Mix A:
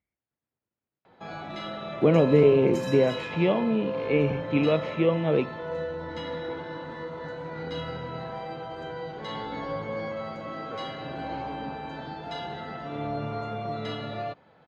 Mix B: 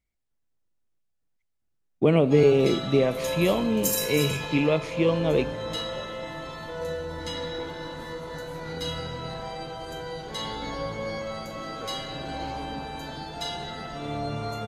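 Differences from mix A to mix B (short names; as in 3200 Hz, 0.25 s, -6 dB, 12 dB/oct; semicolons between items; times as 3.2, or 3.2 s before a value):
background: entry +1.10 s; master: remove BPF 100–2500 Hz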